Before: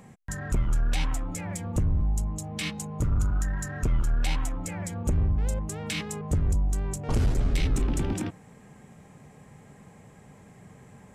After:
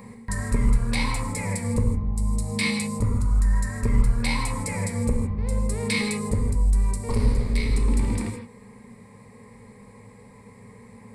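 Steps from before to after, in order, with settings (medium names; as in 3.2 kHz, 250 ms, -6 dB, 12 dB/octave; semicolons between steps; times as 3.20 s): rippled EQ curve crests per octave 0.93, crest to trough 13 dB; gain riding within 4 dB 0.5 s; gated-style reverb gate 190 ms flat, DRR 3.5 dB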